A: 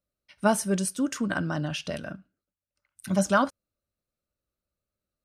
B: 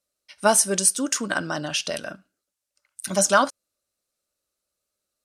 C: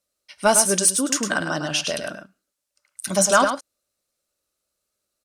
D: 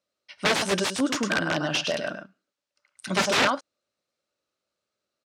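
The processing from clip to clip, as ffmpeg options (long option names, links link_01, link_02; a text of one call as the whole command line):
ffmpeg -i in.wav -af "lowpass=11000,bass=frequency=250:gain=-13,treble=frequency=4000:gain=10,volume=5dB" out.wav
ffmpeg -i in.wav -af "acontrast=42,aecho=1:1:105:0.422,volume=-3.5dB" out.wav
ffmpeg -i in.wav -af "aeval=exprs='(mod(4.73*val(0)+1,2)-1)/4.73':channel_layout=same,acrusher=bits=8:mode=log:mix=0:aa=0.000001,highpass=110,lowpass=4300" out.wav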